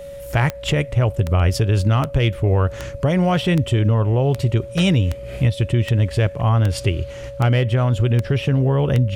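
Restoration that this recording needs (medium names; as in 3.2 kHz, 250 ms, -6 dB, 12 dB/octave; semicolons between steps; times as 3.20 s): de-click; band-stop 560 Hz, Q 30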